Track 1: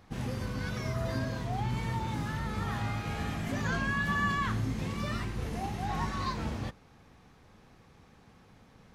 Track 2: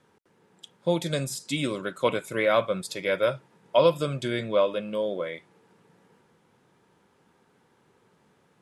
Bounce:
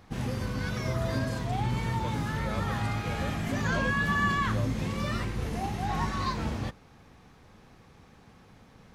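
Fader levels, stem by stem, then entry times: +3.0 dB, -17.5 dB; 0.00 s, 0.00 s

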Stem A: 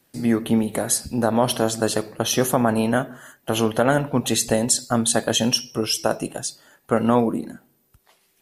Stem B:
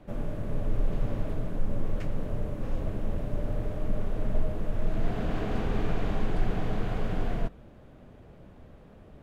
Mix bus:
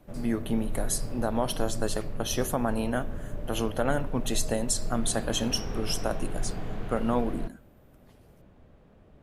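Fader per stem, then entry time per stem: -9.0 dB, -5.0 dB; 0.00 s, 0.00 s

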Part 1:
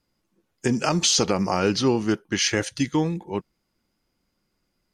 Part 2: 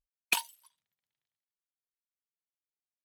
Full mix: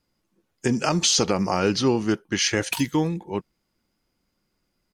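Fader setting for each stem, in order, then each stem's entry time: 0.0 dB, -0.5 dB; 0.00 s, 2.40 s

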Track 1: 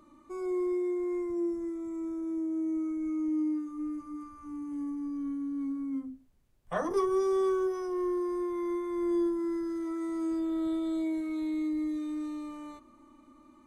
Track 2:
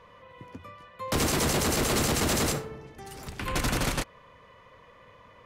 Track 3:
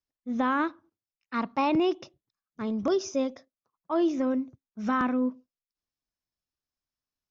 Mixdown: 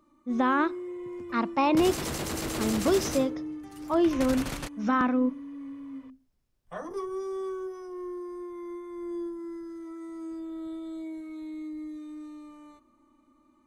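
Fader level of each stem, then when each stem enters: -6.5 dB, -7.5 dB, +1.5 dB; 0.00 s, 0.65 s, 0.00 s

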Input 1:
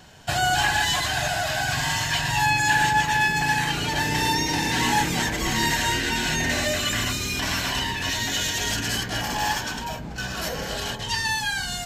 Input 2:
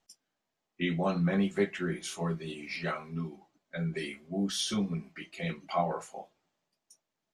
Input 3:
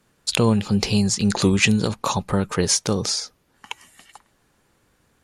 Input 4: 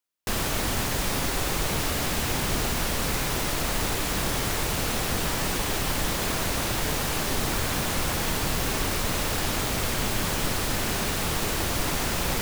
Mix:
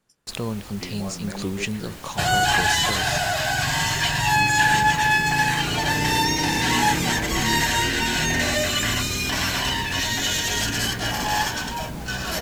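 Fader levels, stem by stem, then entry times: +2.0 dB, -6.5 dB, -10.5 dB, -15.5 dB; 1.90 s, 0.00 s, 0.00 s, 0.00 s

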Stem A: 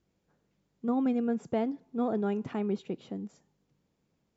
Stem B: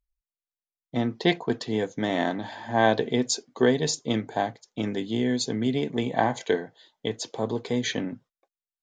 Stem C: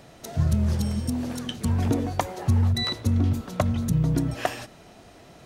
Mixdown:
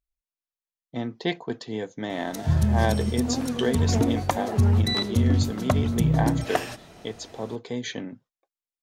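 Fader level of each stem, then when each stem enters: -2.5 dB, -4.5 dB, +1.0 dB; 2.40 s, 0.00 s, 2.10 s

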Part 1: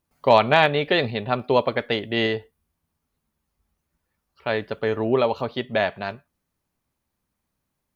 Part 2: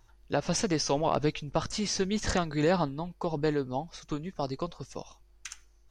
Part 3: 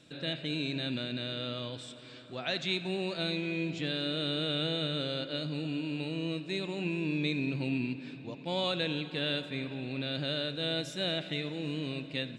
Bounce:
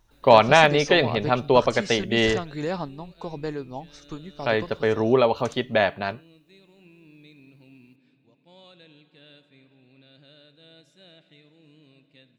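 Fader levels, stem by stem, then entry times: +1.5 dB, -3.0 dB, -19.5 dB; 0.00 s, 0.00 s, 0.00 s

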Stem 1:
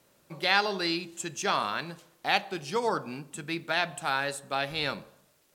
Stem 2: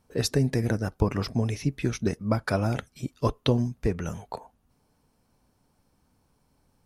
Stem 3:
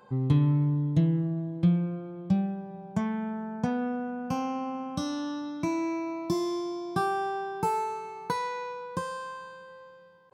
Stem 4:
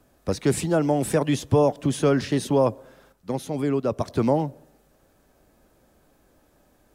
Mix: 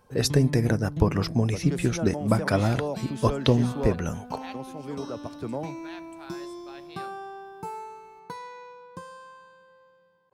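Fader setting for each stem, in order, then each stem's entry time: -18.0 dB, +2.5 dB, -8.5 dB, -11.5 dB; 2.15 s, 0.00 s, 0.00 s, 1.25 s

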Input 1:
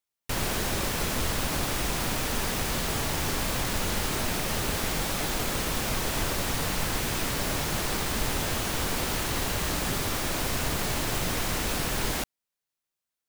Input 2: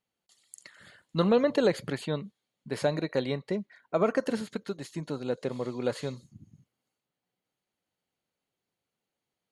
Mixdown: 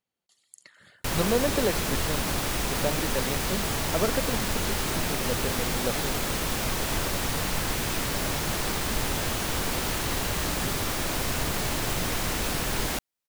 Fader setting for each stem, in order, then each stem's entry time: +0.5 dB, -2.0 dB; 0.75 s, 0.00 s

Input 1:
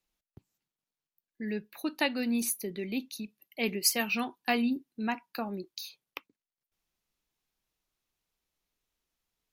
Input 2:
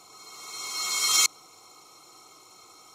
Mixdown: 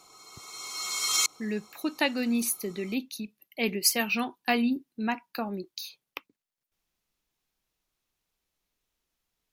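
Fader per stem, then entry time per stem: +2.5 dB, -4.0 dB; 0.00 s, 0.00 s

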